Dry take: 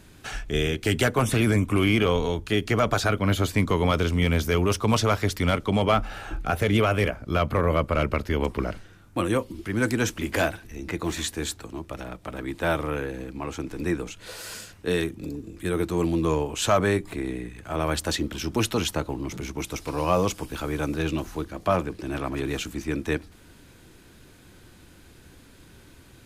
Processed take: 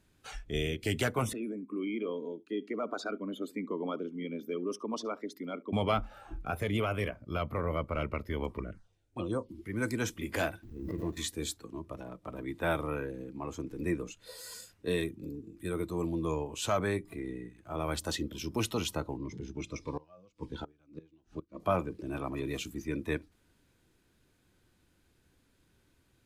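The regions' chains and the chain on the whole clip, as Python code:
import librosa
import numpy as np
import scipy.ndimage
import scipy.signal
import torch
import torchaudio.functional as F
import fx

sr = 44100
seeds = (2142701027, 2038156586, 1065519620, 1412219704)

y = fx.chain(x, sr, fx.envelope_sharpen(power=1.5),
    fx.ladder_highpass(hz=220.0, resonance_pct=40),
    fx.echo_single(ms=71, db=-21.0), at=(1.33, 5.73))
y = fx.chain(y, sr, fx.env_phaser(low_hz=150.0, high_hz=2800.0, full_db=-20.0),
    fx.lowpass(hz=10000.0, slope=24), at=(8.59, 9.49))
y = fx.chain(y, sr, fx.median_filter(points=41),
    fx.quant_dither(seeds[0], bits=10, dither='none'),
    fx.pre_swell(db_per_s=36.0), at=(10.63, 11.17))
y = fx.chain(y, sr, fx.lowpass(hz=5100.0, slope=12),
    fx.gate_flip(shuts_db=-18.0, range_db=-24),
    fx.notch_cascade(direction='falling', hz=1.7), at=(19.17, 21.6))
y = fx.noise_reduce_blind(y, sr, reduce_db=11)
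y = fx.rider(y, sr, range_db=3, speed_s=2.0)
y = y * librosa.db_to_amplitude(-8.0)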